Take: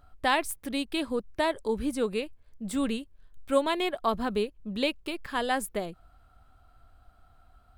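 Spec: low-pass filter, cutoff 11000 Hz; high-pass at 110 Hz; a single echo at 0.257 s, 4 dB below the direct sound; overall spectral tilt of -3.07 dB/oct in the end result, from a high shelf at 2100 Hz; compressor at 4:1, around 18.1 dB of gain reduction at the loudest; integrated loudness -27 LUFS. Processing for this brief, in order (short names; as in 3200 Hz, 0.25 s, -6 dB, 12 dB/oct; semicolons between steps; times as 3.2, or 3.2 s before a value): HPF 110 Hz; LPF 11000 Hz; high shelf 2100 Hz +6.5 dB; compressor 4:1, threshold -41 dBFS; echo 0.257 s -4 dB; gain +14.5 dB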